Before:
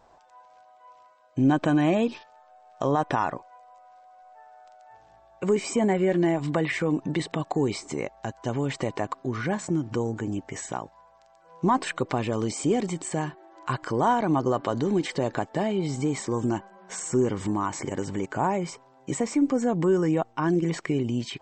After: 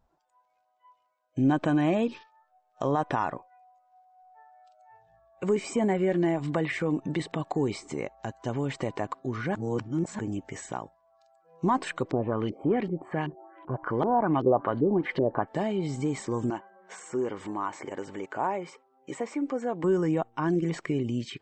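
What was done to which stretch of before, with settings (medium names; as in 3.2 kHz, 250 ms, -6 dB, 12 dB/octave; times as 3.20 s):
9.55–10.19 s: reverse
12.11–15.48 s: LFO low-pass saw up 2.6 Hz 340–3500 Hz
16.50–19.84 s: tone controls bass -14 dB, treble -8 dB
whole clip: spectral noise reduction 16 dB; dynamic bell 6.2 kHz, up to -4 dB, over -49 dBFS, Q 0.75; trim -2.5 dB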